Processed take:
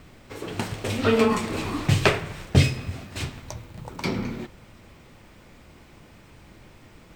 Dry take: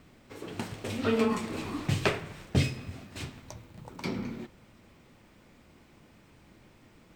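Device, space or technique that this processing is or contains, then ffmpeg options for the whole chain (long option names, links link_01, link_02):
low shelf boost with a cut just above: -af "lowshelf=frequency=71:gain=5,equalizer=frequency=240:width_type=o:width=1.1:gain=-3.5,volume=8dB"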